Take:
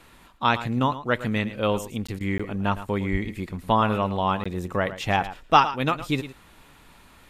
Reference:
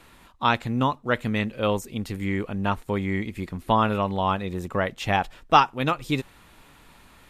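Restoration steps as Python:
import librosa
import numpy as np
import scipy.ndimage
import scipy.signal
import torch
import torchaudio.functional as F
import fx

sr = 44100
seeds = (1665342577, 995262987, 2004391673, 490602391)

y = fx.fix_deplosive(x, sr, at_s=(3.11,))
y = fx.fix_interpolate(y, sr, at_s=(2.07, 2.38, 4.44), length_ms=15.0)
y = fx.fix_interpolate(y, sr, at_s=(2.19,), length_ms=14.0)
y = fx.fix_echo_inverse(y, sr, delay_ms=111, level_db=-13.5)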